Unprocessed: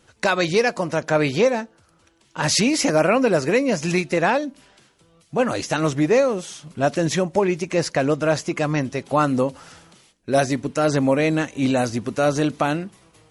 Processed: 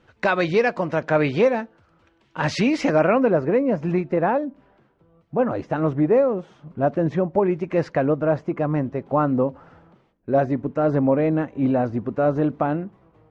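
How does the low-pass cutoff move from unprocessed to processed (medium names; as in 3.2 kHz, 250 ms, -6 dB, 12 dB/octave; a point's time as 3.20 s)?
2.89 s 2.6 kHz
3.43 s 1.1 kHz
7.33 s 1.1 kHz
7.88 s 1.9 kHz
8.14 s 1.1 kHz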